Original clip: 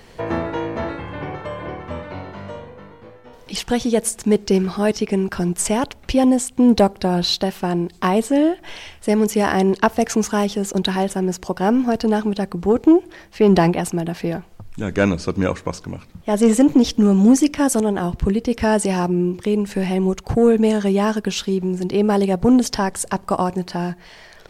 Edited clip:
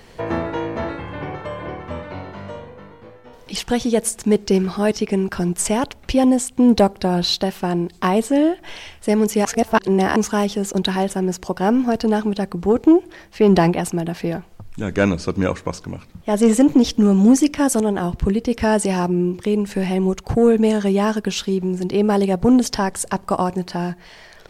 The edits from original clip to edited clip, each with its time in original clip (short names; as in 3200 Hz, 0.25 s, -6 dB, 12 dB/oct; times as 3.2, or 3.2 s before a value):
9.45–10.16 reverse